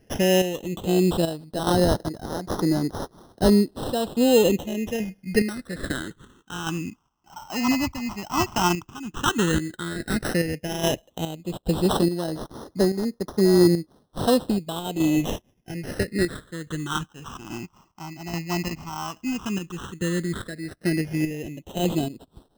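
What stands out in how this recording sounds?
a quantiser's noise floor 12-bit, dither triangular; chopped level 1.2 Hz, depth 60%, duty 50%; aliases and images of a low sample rate 2300 Hz, jitter 0%; phasing stages 8, 0.095 Hz, lowest notch 480–2600 Hz

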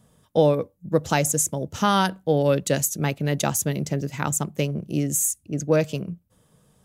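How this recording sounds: noise floor -63 dBFS; spectral tilt -4.5 dB/oct

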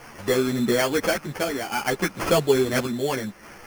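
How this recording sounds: a quantiser's noise floor 8-bit, dither triangular; random-step tremolo; aliases and images of a low sample rate 3800 Hz, jitter 0%; a shimmering, thickened sound

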